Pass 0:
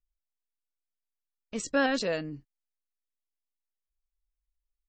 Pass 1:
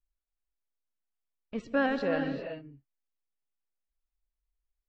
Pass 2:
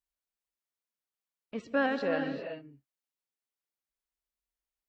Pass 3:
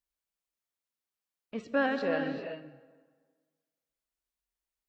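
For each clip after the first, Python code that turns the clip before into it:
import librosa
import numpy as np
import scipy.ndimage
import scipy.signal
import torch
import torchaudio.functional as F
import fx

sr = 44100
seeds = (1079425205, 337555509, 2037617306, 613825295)

y1 = fx.air_absorb(x, sr, metres=370.0)
y1 = fx.rev_gated(y1, sr, seeds[0], gate_ms=420, shape='rising', drr_db=6.0)
y2 = fx.highpass(y1, sr, hz=210.0, slope=6)
y3 = fx.rev_plate(y2, sr, seeds[1], rt60_s=1.6, hf_ratio=0.7, predelay_ms=0, drr_db=13.0)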